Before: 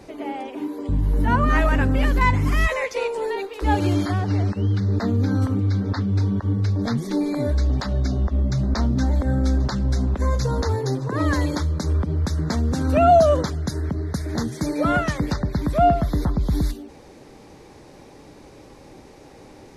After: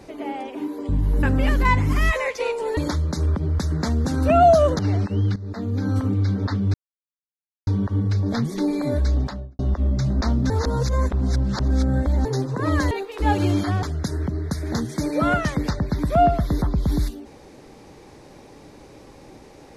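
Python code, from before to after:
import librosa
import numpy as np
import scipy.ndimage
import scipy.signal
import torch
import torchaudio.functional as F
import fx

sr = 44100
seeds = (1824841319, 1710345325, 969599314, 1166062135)

y = fx.studio_fade_out(x, sr, start_s=7.65, length_s=0.47)
y = fx.edit(y, sr, fx.cut(start_s=1.23, length_s=0.56),
    fx.swap(start_s=3.33, length_s=0.92, other_s=11.44, other_length_s=2.02),
    fx.fade_in_from(start_s=4.82, length_s=0.7, floor_db=-15.5),
    fx.insert_silence(at_s=6.2, length_s=0.93),
    fx.reverse_span(start_s=9.03, length_s=1.75), tone=tone)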